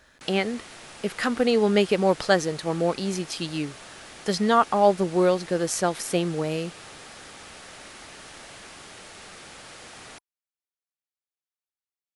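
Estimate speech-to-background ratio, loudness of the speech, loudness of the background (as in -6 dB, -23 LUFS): 18.0 dB, -24.5 LUFS, -42.5 LUFS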